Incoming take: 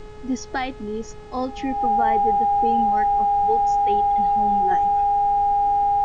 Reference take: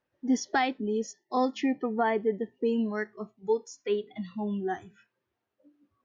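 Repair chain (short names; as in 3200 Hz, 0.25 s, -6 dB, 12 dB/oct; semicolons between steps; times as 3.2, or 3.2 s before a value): de-hum 422.5 Hz, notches 17; notch 810 Hz, Q 30; noise print and reduce 30 dB; gain 0 dB, from 4.71 s -6 dB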